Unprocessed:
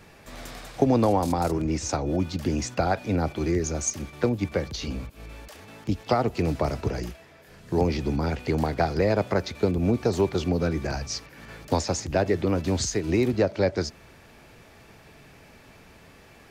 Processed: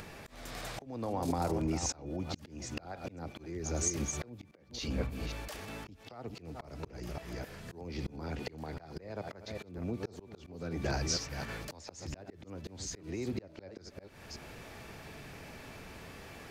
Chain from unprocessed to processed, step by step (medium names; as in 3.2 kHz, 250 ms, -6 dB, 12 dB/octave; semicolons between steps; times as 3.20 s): chunks repeated in reverse 266 ms, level -11.5 dB; compression 20:1, threshold -29 dBFS, peak gain reduction 15.5 dB; slow attack 446 ms; upward compressor, threshold -46 dBFS; 4.51–5.12 s: three bands expanded up and down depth 70%; trim +1.5 dB